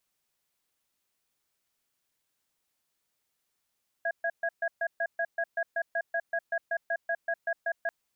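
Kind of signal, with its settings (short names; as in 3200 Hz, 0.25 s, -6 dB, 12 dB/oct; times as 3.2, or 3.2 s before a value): cadence 673 Hz, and 1650 Hz, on 0.06 s, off 0.13 s, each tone -29 dBFS 3.84 s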